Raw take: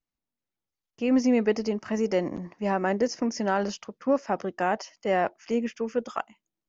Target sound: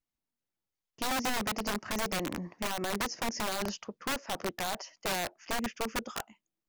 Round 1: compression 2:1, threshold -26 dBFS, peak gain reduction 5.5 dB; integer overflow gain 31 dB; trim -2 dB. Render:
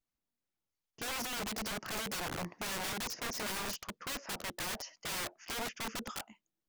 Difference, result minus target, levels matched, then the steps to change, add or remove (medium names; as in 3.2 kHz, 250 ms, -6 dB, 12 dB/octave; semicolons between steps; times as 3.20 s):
integer overflow: distortion +16 dB
change: integer overflow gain 24 dB